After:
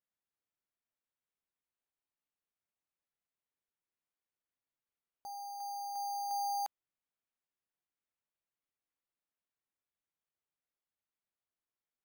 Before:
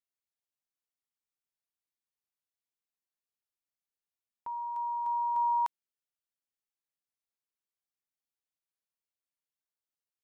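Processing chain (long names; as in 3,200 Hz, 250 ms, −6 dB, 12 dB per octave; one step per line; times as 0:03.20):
speed change −15%
bad sample-rate conversion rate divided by 8×, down none, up hold
level −7.5 dB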